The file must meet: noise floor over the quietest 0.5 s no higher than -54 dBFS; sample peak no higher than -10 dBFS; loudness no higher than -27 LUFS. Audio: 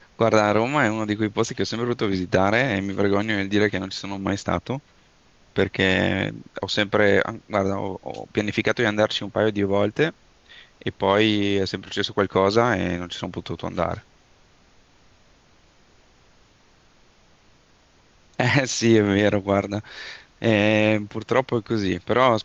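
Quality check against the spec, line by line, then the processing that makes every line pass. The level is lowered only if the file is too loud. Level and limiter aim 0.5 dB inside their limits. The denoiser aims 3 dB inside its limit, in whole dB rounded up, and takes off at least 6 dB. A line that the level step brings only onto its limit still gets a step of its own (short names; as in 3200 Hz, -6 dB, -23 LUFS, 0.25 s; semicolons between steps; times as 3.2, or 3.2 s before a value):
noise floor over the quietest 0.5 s -57 dBFS: OK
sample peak -5.0 dBFS: fail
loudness -22.5 LUFS: fail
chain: gain -5 dB; limiter -10.5 dBFS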